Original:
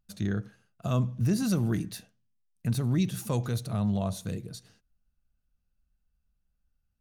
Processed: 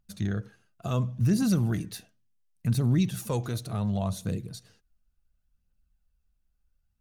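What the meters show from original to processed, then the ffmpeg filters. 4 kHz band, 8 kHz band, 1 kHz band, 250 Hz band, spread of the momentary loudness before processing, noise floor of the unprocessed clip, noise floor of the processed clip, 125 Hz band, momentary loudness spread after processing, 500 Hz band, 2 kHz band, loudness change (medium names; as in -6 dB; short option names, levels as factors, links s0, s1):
+0.5 dB, +0.5 dB, +1.0 dB, +1.0 dB, 12 LU, -78 dBFS, -74 dBFS, +1.5 dB, 15 LU, +0.5 dB, +0.5 dB, +1.5 dB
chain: -af "aphaser=in_gain=1:out_gain=1:delay=3.3:decay=0.35:speed=0.7:type=triangular"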